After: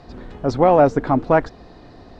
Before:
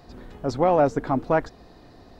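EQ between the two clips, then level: air absorption 76 m; +6.0 dB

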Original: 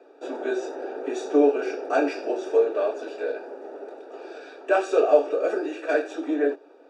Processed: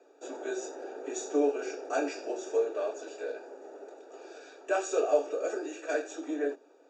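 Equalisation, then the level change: HPF 190 Hz; synth low-pass 6900 Hz, resonance Q 8.7; notches 50/100/150/200/250 Hz; -8.0 dB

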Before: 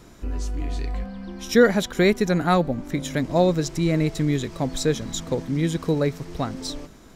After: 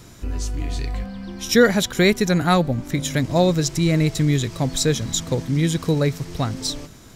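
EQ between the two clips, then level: bell 110 Hz +9.5 dB 0.97 oct; high shelf 2200 Hz +8.5 dB; 0.0 dB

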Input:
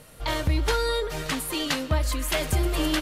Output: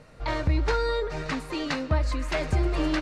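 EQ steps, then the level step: air absorption 130 m; bell 3200 Hz -9.5 dB 0.29 oct; 0.0 dB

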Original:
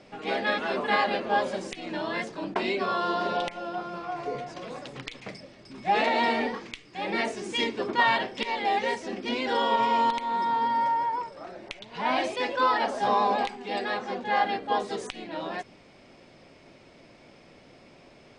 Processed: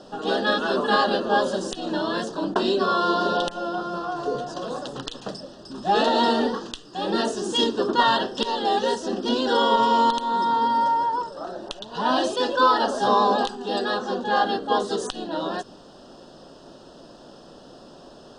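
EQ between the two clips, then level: bell 100 Hz -9.5 dB 0.9 oct; dynamic EQ 770 Hz, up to -6 dB, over -39 dBFS, Q 1.7; Butterworth band-stop 2200 Hz, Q 1.5; +8.5 dB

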